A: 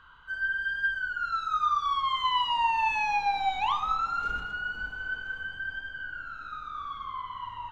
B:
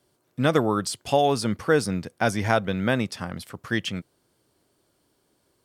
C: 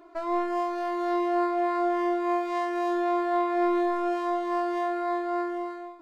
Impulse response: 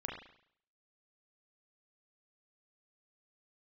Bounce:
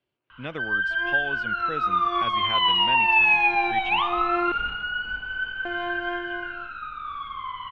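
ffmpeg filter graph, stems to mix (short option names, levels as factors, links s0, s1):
-filter_complex "[0:a]adelay=300,volume=1.19[s0];[1:a]volume=0.188,asplit=2[s1][s2];[2:a]aeval=exprs='sgn(val(0))*max(abs(val(0))-0.00473,0)':c=same,adelay=750,volume=0.75,asplit=3[s3][s4][s5];[s3]atrim=end=4.52,asetpts=PTS-STARTPTS,afade=t=out:st=4.516:d=0.004:c=hsin[s6];[s4]atrim=start=4.52:end=5.65,asetpts=PTS-STARTPTS,volume=0[s7];[s5]atrim=start=5.65,asetpts=PTS-STARTPTS,afade=t=in:d=0.004:c=hsin[s8];[s6][s7][s8]concat=n=3:v=0:a=1[s9];[s2]apad=whole_len=298172[s10];[s9][s10]sidechaincompress=threshold=0.00282:ratio=8:attack=34:release=283[s11];[s0][s1][s11]amix=inputs=3:normalize=0,lowpass=f=2700:t=q:w=3.8"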